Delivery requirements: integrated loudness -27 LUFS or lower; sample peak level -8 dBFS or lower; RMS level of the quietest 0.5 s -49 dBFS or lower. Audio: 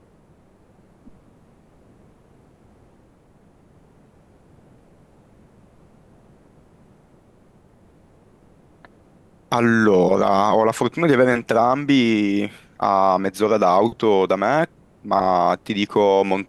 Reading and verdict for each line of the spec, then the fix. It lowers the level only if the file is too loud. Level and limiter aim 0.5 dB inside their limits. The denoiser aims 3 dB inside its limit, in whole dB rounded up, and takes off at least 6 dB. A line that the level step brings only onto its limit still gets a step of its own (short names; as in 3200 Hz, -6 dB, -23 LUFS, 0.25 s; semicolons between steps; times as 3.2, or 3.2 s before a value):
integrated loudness -18.5 LUFS: fail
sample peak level -5.5 dBFS: fail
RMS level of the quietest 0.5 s -54 dBFS: OK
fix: gain -9 dB